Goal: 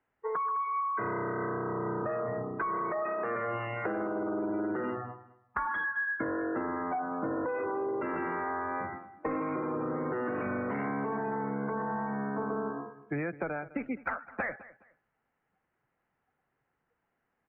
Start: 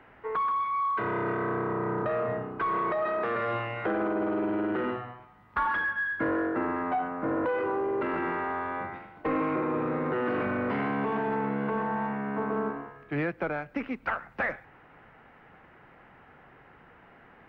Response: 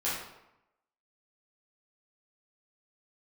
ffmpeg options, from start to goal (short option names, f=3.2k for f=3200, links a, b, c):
-filter_complex "[0:a]afftdn=nr=28:nf=-38,acompressor=threshold=-32dB:ratio=6,asplit=2[a][b];[b]aecho=0:1:209|418:0.126|0.0315[c];[a][c]amix=inputs=2:normalize=0,volume=2dB"